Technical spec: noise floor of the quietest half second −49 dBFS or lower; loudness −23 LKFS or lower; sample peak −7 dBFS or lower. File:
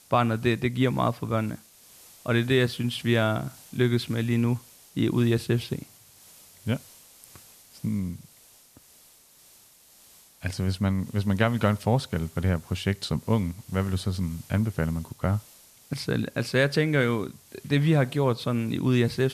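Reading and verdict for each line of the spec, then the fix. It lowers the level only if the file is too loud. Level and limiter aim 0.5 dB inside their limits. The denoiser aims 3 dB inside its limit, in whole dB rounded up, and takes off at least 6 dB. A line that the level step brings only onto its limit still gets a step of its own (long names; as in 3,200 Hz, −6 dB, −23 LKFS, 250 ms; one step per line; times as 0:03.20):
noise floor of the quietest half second −56 dBFS: in spec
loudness −26.5 LKFS: in spec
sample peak −8.0 dBFS: in spec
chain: no processing needed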